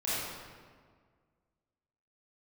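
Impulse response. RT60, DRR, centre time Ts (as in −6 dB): 1.8 s, −11.0 dB, 127 ms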